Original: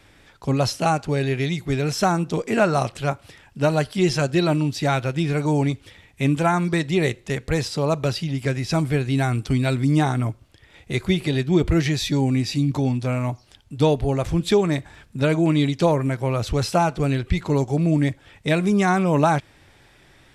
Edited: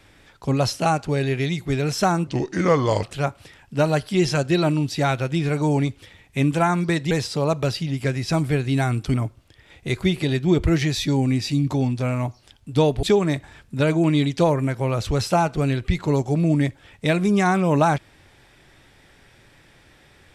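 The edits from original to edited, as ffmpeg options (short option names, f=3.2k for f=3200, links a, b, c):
-filter_complex "[0:a]asplit=6[a][b][c][d][e][f];[a]atrim=end=2.274[g];[b]atrim=start=2.27:end=2.87,asetpts=PTS-STARTPTS,asetrate=34839,aresample=44100[h];[c]atrim=start=2.866:end=6.952[i];[d]atrim=start=7.518:end=9.552[j];[e]atrim=start=10.178:end=14.072[k];[f]atrim=start=14.448[l];[g][h]acrossfade=d=0.004:c1=hsin:c2=hsin[m];[m][i]acrossfade=d=0.004:c1=hsin:c2=hsin[n];[n][j]acrossfade=d=0.004:c1=hsin:c2=hsin[o];[o][k]acrossfade=d=0.004:c1=hsin:c2=hsin[p];[p][l]acrossfade=d=0.004:c1=hsin:c2=hsin"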